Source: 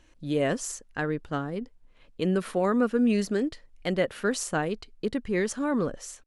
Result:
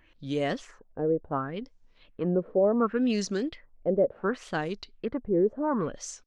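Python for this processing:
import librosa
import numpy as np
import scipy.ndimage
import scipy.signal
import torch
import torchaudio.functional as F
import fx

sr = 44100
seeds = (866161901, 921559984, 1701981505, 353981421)

y = fx.filter_lfo_lowpass(x, sr, shape='sine', hz=0.69, low_hz=460.0, high_hz=6300.0, q=3.0)
y = fx.wow_flutter(y, sr, seeds[0], rate_hz=2.1, depth_cents=92.0)
y = F.gain(torch.from_numpy(y), -3.0).numpy()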